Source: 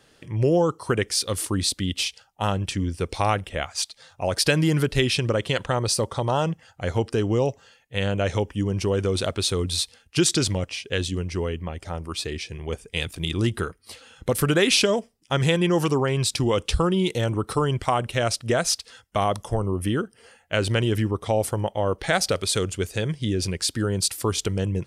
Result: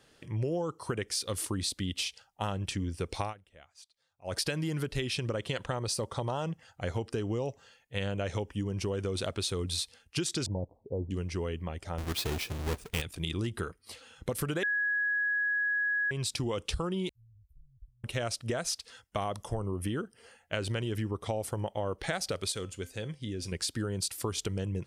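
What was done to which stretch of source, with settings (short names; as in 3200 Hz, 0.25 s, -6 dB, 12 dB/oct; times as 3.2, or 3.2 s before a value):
3.22–4.36 dip -22.5 dB, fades 0.12 s
10.46–11.11 steep low-pass 940 Hz 72 dB/oct
11.98–13.02 half-waves squared off
14.63–16.11 bleep 1670 Hz -13 dBFS
17.09–18.04 inverse Chebyshev band-stop 300–6800 Hz, stop band 80 dB
22.52–23.52 resonator 260 Hz, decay 0.28 s
whole clip: compressor, threshold -24 dBFS; gain -5 dB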